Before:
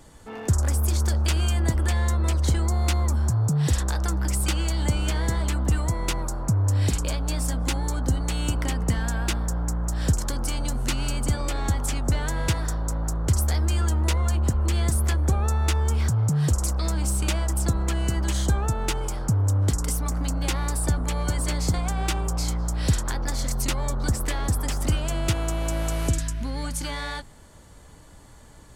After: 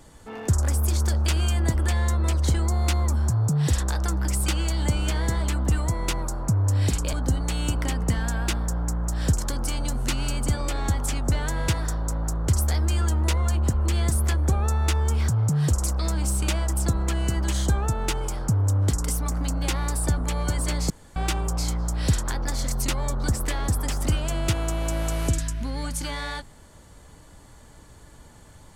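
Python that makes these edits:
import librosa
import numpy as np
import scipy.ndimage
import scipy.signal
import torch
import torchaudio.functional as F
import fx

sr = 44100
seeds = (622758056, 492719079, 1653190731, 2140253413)

y = fx.edit(x, sr, fx.cut(start_s=7.13, length_s=0.8),
    fx.room_tone_fill(start_s=21.7, length_s=0.26), tone=tone)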